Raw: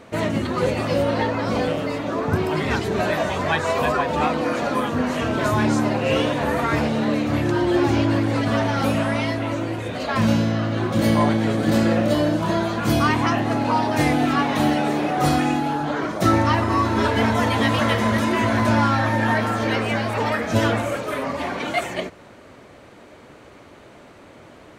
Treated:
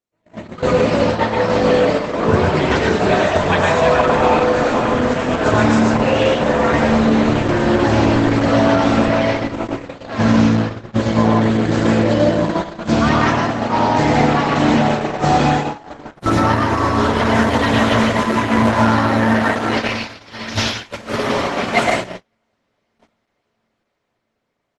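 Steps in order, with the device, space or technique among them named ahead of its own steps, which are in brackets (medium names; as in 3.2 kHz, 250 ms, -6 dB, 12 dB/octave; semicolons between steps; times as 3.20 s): 19.77–20.91 s: FFT filter 100 Hz 0 dB, 150 Hz -19 dB, 1 kHz -16 dB, 2.4 kHz +3 dB, 5.3 kHz +11 dB, 8.7 kHz -8 dB, 14 kHz +9 dB; echo that smears into a reverb 561 ms, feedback 77%, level -12 dB; speakerphone in a meeting room (reverberation RT60 0.50 s, pre-delay 102 ms, DRR -0.5 dB; speakerphone echo 290 ms, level -28 dB; level rider gain up to 11 dB; gate -14 dBFS, range -47 dB; trim -1 dB; Opus 12 kbps 48 kHz)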